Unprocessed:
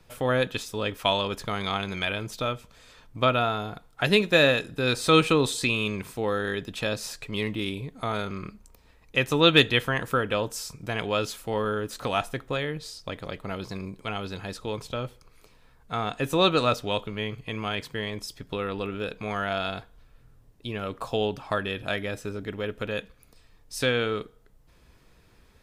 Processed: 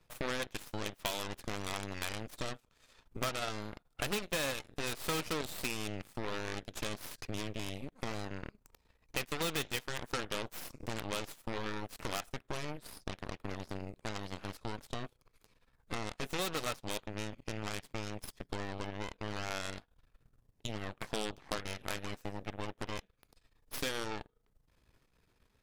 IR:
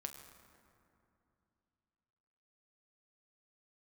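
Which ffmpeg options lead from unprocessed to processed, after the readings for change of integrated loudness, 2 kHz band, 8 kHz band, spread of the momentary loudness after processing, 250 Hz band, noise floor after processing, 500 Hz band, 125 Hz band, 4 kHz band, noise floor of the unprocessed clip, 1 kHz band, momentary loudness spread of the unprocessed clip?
-12.5 dB, -12.5 dB, -4.0 dB, 9 LU, -12.5 dB, -74 dBFS, -15.0 dB, -12.0 dB, -12.5 dB, -58 dBFS, -12.0 dB, 15 LU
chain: -af "volume=12.5dB,asoftclip=hard,volume=-12.5dB,aeval=exprs='0.251*(cos(1*acos(clip(val(0)/0.251,-1,1)))-cos(1*PI/2))+0.00447*(cos(3*acos(clip(val(0)/0.251,-1,1)))-cos(3*PI/2))+0.112*(cos(6*acos(clip(val(0)/0.251,-1,1)))-cos(6*PI/2))+0.0282*(cos(7*acos(clip(val(0)/0.251,-1,1)))-cos(7*PI/2))+0.126*(cos(8*acos(clip(val(0)/0.251,-1,1)))-cos(8*PI/2))':c=same,acompressor=threshold=-41dB:ratio=3,volume=2.5dB"

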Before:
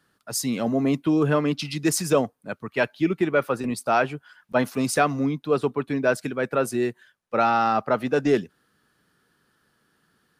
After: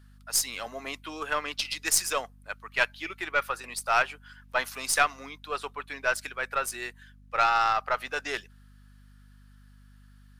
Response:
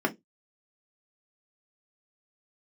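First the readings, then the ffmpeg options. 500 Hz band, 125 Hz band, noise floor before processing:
-12.0 dB, -20.5 dB, -69 dBFS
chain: -af "highpass=1.2k,aeval=exprs='val(0)+0.002*(sin(2*PI*50*n/s)+sin(2*PI*2*50*n/s)/2+sin(2*PI*3*50*n/s)/3+sin(2*PI*4*50*n/s)/4+sin(2*PI*5*50*n/s)/5)':c=same,aeval=exprs='0.251*(cos(1*acos(clip(val(0)/0.251,-1,1)))-cos(1*PI/2))+0.0282*(cos(3*acos(clip(val(0)/0.251,-1,1)))-cos(3*PI/2))+0.00631*(cos(6*acos(clip(val(0)/0.251,-1,1)))-cos(6*PI/2))+0.00178*(cos(7*acos(clip(val(0)/0.251,-1,1)))-cos(7*PI/2))':c=same,volume=5.5dB"

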